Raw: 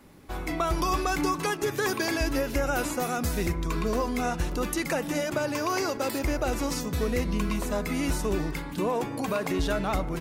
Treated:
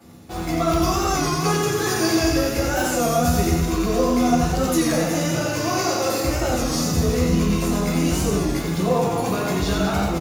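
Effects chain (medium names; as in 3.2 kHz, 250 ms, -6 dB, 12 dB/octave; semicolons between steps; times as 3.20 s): treble shelf 5.8 kHz +6 dB; reverse; upward compressor, threshold -39 dBFS; reverse; peaking EQ 690 Hz +4.5 dB 0.3 oct; reverse bouncing-ball echo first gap 90 ms, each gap 1.3×, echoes 5; in parallel at -11 dB: companded quantiser 2-bit; on the sum: reverberation RT60 0.55 s, pre-delay 3 ms, DRR -6 dB; warped record 33 1/3 rpm, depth 100 cents; trim -5.5 dB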